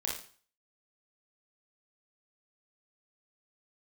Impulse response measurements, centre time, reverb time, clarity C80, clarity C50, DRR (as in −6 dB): 36 ms, 0.45 s, 9.0 dB, 3.5 dB, −2.5 dB